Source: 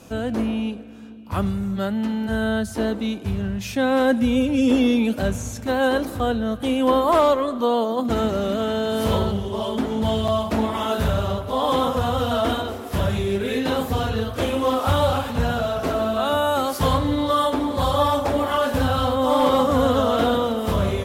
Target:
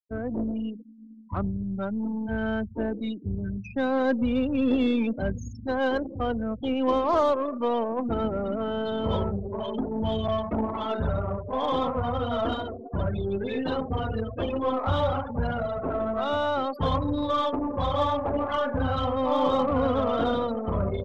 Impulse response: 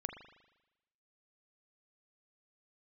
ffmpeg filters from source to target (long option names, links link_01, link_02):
-af "afftfilt=real='re*gte(hypot(re,im),0.0708)':imag='im*gte(hypot(re,im),0.0708)':win_size=1024:overlap=0.75,aeval=exprs='0.422*(cos(1*acos(clip(val(0)/0.422,-1,1)))-cos(1*PI/2))+0.0133*(cos(8*acos(clip(val(0)/0.422,-1,1)))-cos(8*PI/2))':channel_layout=same,volume=-5.5dB"